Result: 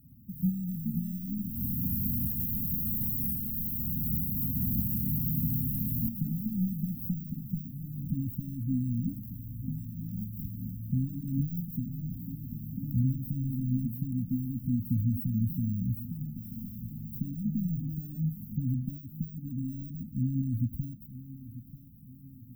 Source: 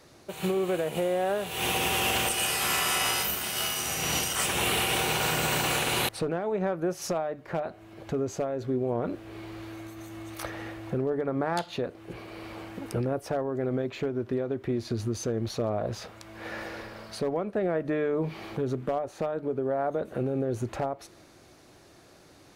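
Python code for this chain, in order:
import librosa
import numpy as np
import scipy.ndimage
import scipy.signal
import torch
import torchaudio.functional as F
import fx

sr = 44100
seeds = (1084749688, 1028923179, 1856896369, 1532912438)

p1 = fx.high_shelf(x, sr, hz=5000.0, db=3.5)
p2 = 10.0 ** (-29.5 / 20.0) * np.tanh(p1 / 10.0 ** (-29.5 / 20.0))
p3 = p1 + (p2 * librosa.db_to_amplitude(-5.0))
p4 = fx.echo_pitch(p3, sr, ms=492, semitones=3, count=3, db_per_echo=-6.0)
p5 = p4 + fx.echo_feedback(p4, sr, ms=940, feedback_pct=45, wet_db=-15.0, dry=0)
p6 = np.repeat(p5[::4], 4)[:len(p5)]
p7 = fx.brickwall_bandstop(p6, sr, low_hz=270.0, high_hz=13000.0)
y = p7 * librosa.db_to_amplitude(2.0)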